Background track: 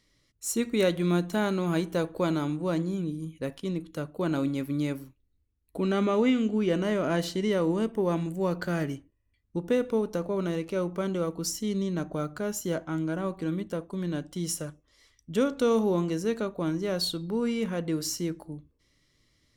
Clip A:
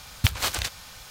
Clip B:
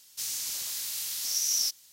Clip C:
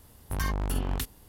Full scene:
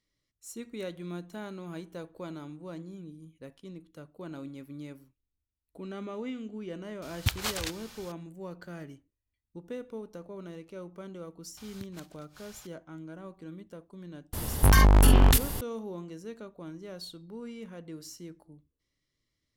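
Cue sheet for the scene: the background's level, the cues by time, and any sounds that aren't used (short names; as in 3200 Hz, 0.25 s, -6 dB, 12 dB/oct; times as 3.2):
background track -13.5 dB
7.02 add A -6 dB
11.57 add A -8.5 dB + flipped gate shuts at -20 dBFS, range -25 dB
14.33 add C -9.5 dB + maximiser +30 dB
not used: B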